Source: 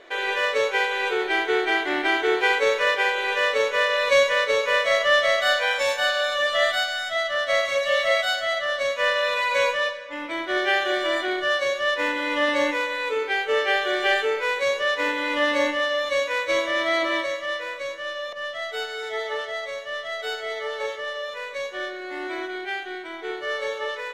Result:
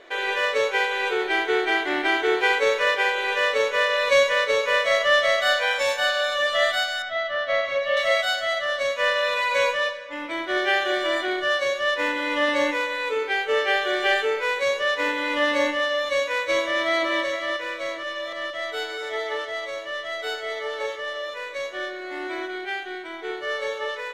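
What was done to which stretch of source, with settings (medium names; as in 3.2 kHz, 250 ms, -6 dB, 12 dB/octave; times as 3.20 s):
7.02–7.97 s: distance through air 210 m
16.65–17.09 s: echo throw 470 ms, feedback 80%, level -10.5 dB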